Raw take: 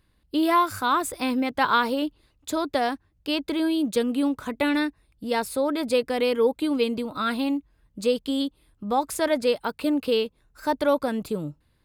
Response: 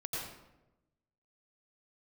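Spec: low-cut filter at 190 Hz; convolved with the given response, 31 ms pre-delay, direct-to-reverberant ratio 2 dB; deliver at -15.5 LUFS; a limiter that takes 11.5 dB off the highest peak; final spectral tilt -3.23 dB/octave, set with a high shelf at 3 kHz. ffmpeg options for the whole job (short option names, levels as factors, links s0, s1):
-filter_complex "[0:a]highpass=190,highshelf=f=3000:g=-3.5,alimiter=limit=0.0891:level=0:latency=1,asplit=2[s0][s1];[1:a]atrim=start_sample=2205,adelay=31[s2];[s1][s2]afir=irnorm=-1:irlink=0,volume=0.631[s3];[s0][s3]amix=inputs=2:normalize=0,volume=3.98"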